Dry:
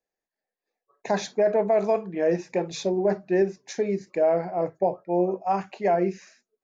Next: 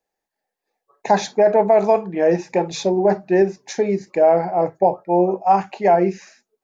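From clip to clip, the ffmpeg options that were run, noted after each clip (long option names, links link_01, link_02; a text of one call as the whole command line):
ffmpeg -i in.wav -af "equalizer=frequency=840:width_type=o:width=0.29:gain=8,volume=6dB" out.wav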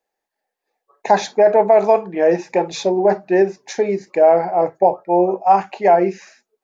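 ffmpeg -i in.wav -af "bass=frequency=250:gain=-8,treble=frequency=4000:gain=-3,volume=2.5dB" out.wav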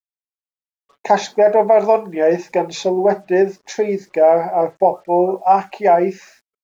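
ffmpeg -i in.wav -af "acrusher=bits=8:mix=0:aa=0.5" out.wav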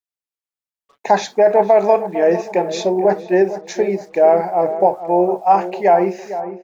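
ffmpeg -i in.wav -filter_complex "[0:a]asplit=2[link_01][link_02];[link_02]adelay=455,lowpass=frequency=1400:poles=1,volume=-11.5dB,asplit=2[link_03][link_04];[link_04]adelay=455,lowpass=frequency=1400:poles=1,volume=0.47,asplit=2[link_05][link_06];[link_06]adelay=455,lowpass=frequency=1400:poles=1,volume=0.47,asplit=2[link_07][link_08];[link_08]adelay=455,lowpass=frequency=1400:poles=1,volume=0.47,asplit=2[link_09][link_10];[link_10]adelay=455,lowpass=frequency=1400:poles=1,volume=0.47[link_11];[link_01][link_03][link_05][link_07][link_09][link_11]amix=inputs=6:normalize=0" out.wav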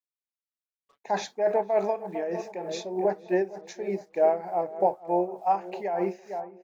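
ffmpeg -i in.wav -af "tremolo=f=3.3:d=0.7,volume=-9dB" out.wav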